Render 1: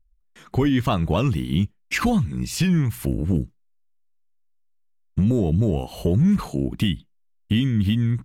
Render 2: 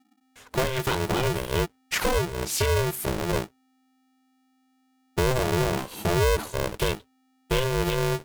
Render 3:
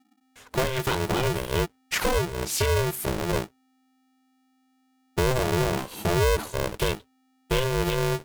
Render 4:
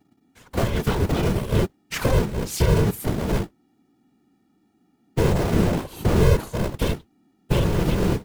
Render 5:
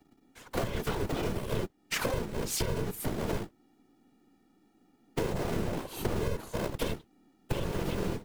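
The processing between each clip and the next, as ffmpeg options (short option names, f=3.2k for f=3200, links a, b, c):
-af "flanger=delay=0.1:depth=2.5:regen=-77:speed=0.43:shape=sinusoidal,crystalizer=i=1.5:c=0,aeval=exprs='val(0)*sgn(sin(2*PI*260*n/s))':c=same"
-af anull
-af "lowshelf=f=300:g=11.5,afftfilt=real='hypot(re,im)*cos(2*PI*random(0))':imag='hypot(re,im)*sin(2*PI*random(1))':win_size=512:overlap=0.75,volume=3.5dB"
-filter_complex "[0:a]acrossover=split=250|460|5100[a][b][c][d];[a]aeval=exprs='max(val(0),0)':c=same[e];[e][b][c][d]amix=inputs=4:normalize=0,acompressor=threshold=-28dB:ratio=6"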